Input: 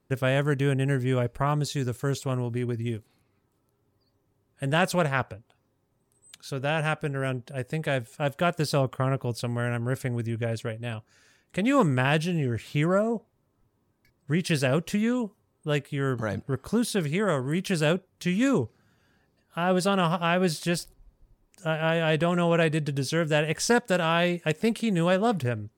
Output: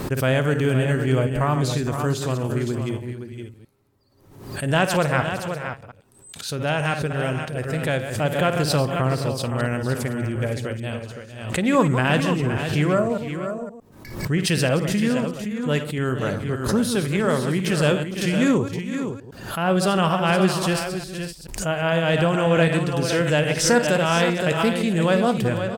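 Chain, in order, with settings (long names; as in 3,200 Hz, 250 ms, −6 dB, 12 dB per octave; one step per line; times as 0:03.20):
delay that plays each chunk backwards 108 ms, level −9 dB
on a send: multi-tap delay 54/460/517 ms −13.5/−14.5/−8.5 dB
on the sum: background raised ahead of every attack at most 74 dB per second
level +3 dB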